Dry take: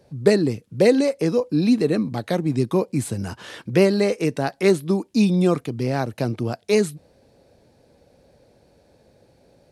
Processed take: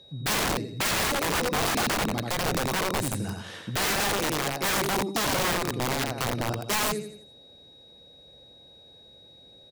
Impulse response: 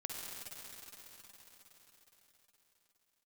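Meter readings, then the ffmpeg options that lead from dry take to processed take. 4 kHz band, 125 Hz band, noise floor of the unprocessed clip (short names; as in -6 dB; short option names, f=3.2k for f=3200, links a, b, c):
+6.0 dB, -8.0 dB, -58 dBFS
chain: -af "aecho=1:1:85|170|255|340|425:0.631|0.259|0.106|0.0435|0.0178,aeval=exprs='(mod(6.68*val(0)+1,2)-1)/6.68':c=same,aeval=exprs='val(0)+0.00501*sin(2*PI*3800*n/s)':c=same,volume=-4.5dB"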